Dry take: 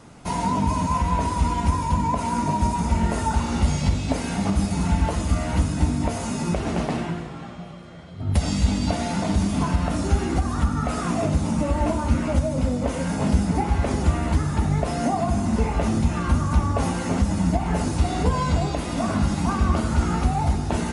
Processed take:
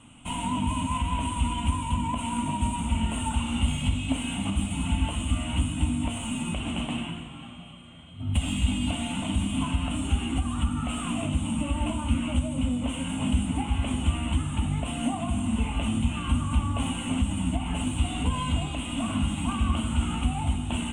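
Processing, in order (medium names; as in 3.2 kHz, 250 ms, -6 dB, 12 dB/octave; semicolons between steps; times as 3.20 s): tracing distortion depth 0.068 ms; FFT filter 120 Hz 0 dB, 180 Hz -5 dB, 260 Hz +5 dB, 390 Hz -13 dB, 1.1 kHz -1 dB, 1.8 kHz -8 dB, 3 kHz +14 dB, 5 kHz -24 dB, 8.6 kHz +12 dB, 12 kHz -16 dB; trim -4.5 dB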